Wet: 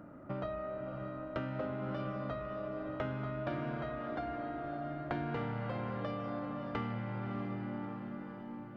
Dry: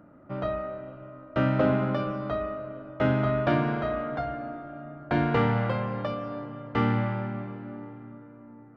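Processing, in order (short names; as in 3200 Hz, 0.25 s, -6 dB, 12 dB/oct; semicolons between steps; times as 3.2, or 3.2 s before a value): compressor 6:1, threshold -38 dBFS, peak gain reduction 18 dB; diffused feedback echo 0.628 s, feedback 52%, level -8 dB; gain +1.5 dB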